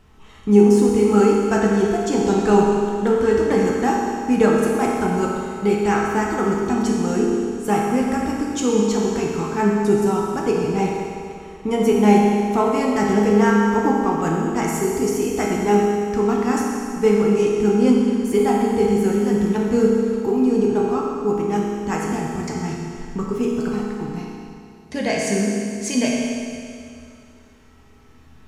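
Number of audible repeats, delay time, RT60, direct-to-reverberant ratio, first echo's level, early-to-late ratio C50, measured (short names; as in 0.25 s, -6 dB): none, none, 2.4 s, -3.5 dB, none, -0.5 dB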